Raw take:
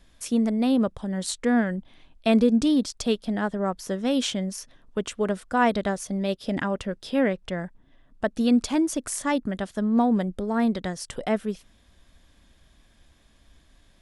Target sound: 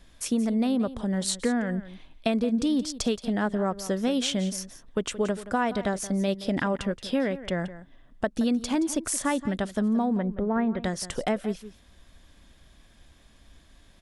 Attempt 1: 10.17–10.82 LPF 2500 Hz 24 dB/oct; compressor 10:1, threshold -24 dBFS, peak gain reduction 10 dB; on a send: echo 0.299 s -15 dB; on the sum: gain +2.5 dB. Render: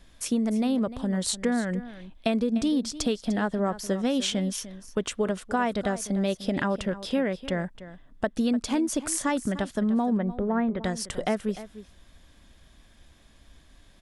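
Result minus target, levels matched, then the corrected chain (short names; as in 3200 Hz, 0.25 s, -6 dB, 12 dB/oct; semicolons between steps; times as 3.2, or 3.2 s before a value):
echo 0.125 s late
10.17–10.82 LPF 2500 Hz 24 dB/oct; compressor 10:1, threshold -24 dBFS, peak gain reduction 10 dB; on a send: echo 0.174 s -15 dB; on the sum: gain +2.5 dB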